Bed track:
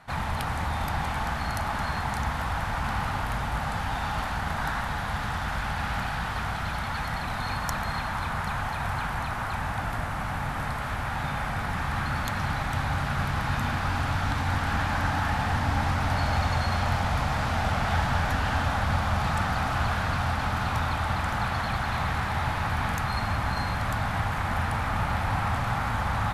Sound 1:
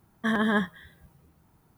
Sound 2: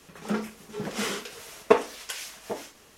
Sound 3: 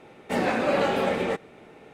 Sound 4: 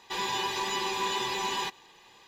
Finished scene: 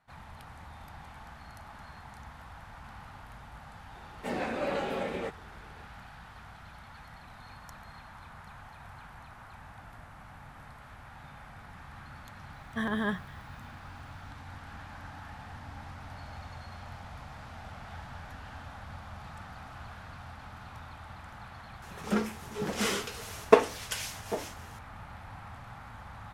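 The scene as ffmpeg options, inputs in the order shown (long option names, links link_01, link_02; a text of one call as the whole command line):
ffmpeg -i bed.wav -i cue0.wav -i cue1.wav -i cue2.wav -filter_complex "[0:a]volume=-19dB[link_01];[3:a]atrim=end=1.93,asetpts=PTS-STARTPTS,volume=-9dB,afade=type=in:duration=0.004:curve=hsin,afade=type=out:start_time=1.926:duration=0.004:curve=hsin,adelay=3940[link_02];[1:a]atrim=end=1.77,asetpts=PTS-STARTPTS,volume=-6.5dB,afade=type=in:duration=0.004:curve=hsin,afade=type=out:start_time=1.766:duration=0.004:curve=hsin,adelay=552132S[link_03];[2:a]atrim=end=2.97,asetpts=PTS-STARTPTS,afade=type=in:duration=0.004:curve=hsin,afade=type=out:start_time=2.966:duration=0.004:curve=hsin,adelay=21820[link_04];[link_01][link_02][link_03][link_04]amix=inputs=4:normalize=0" out.wav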